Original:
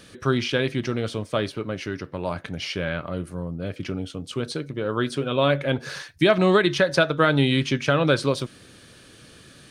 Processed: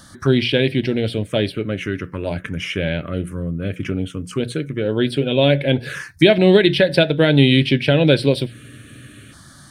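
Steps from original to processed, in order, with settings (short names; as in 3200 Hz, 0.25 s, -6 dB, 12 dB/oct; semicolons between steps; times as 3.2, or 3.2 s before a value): envelope phaser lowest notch 410 Hz, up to 1200 Hz, full sweep at -23 dBFS; notches 60/120/180 Hz; spectral freeze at 8.55, 0.77 s; gain +8 dB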